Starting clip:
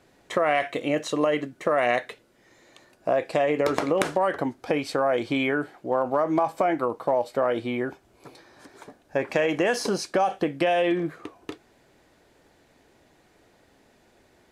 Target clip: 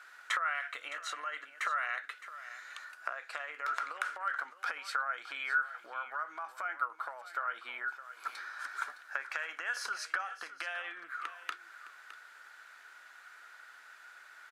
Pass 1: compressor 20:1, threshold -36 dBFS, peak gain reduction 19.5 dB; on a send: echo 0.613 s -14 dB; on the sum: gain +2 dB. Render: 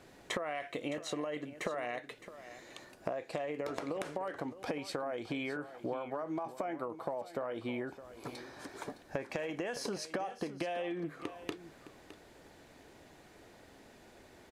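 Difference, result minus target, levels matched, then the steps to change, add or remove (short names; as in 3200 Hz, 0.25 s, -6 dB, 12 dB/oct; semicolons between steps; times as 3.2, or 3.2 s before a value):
1000 Hz band -3.0 dB
add after compressor: resonant high-pass 1400 Hz, resonance Q 8.7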